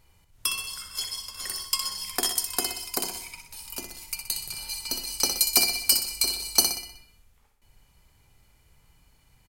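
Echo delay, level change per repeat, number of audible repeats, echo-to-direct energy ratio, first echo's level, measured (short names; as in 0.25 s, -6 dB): 62 ms, -6.5 dB, 5, -6.0 dB, -7.0 dB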